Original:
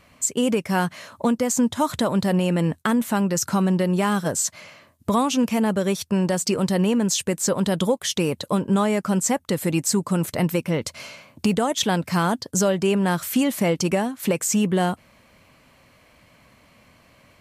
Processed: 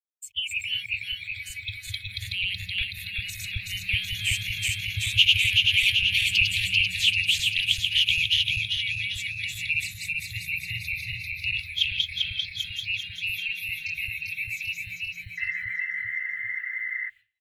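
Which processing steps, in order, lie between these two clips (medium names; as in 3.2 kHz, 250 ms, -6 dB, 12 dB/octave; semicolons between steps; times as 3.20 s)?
backward echo that repeats 192 ms, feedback 82%, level -1 dB; Doppler pass-by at 5.68 s, 9 m/s, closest 11 m; feedback delay 171 ms, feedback 29%, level -19 dB; in parallel at +2.5 dB: compression 16:1, threshold -28 dBFS, peak gain reduction 16 dB; on the sum: painted sound noise, 15.37–17.10 s, 970–2100 Hz -22 dBFS; on a send: tape echo 530 ms, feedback 47%, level -23 dB, low-pass 1 kHz; on the sum: bit crusher 8-bit; spectral noise reduction 21 dB; expander -33 dBFS; Chebyshev band-stop 110–2300 Hz, order 5; resonant high shelf 4.1 kHz -12.5 dB, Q 3; trim +6.5 dB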